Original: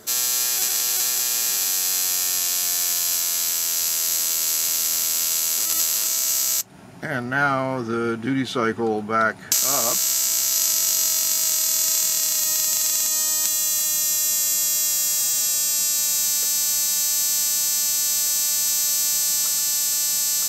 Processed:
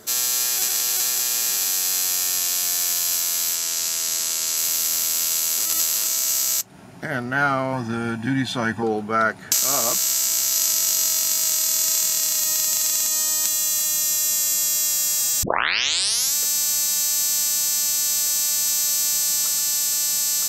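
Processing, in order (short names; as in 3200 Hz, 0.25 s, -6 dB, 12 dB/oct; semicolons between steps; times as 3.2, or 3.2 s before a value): 3.55–4.57 LPF 11000 Hz 12 dB/oct; 7.73–8.83 comb 1.2 ms, depth 77%; 15.43 tape start 0.92 s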